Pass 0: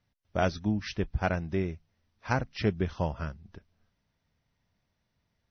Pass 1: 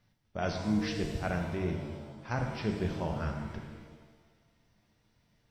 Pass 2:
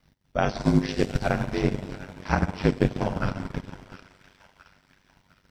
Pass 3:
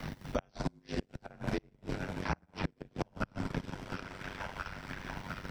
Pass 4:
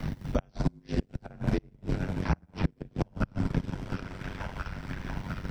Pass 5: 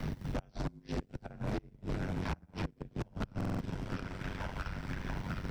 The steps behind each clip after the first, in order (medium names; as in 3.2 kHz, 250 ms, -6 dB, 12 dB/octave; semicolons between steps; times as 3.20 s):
reverse; compression 4:1, threshold -37 dBFS, peak gain reduction 14 dB; reverse; pitch-shifted reverb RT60 1.4 s, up +7 st, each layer -8 dB, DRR 2.5 dB; trim +4.5 dB
feedback echo behind a high-pass 694 ms, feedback 38%, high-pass 1.5 kHz, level -9 dB; ring modulator 48 Hz; transient shaper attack +6 dB, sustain -11 dB; trim +9 dB
inverted gate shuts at -14 dBFS, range -35 dB; three bands compressed up and down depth 100%; trim -3.5 dB
bass shelf 300 Hz +11 dB
overload inside the chain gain 30 dB; buffer glitch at 3.36 s, samples 2048, times 4; trim -1.5 dB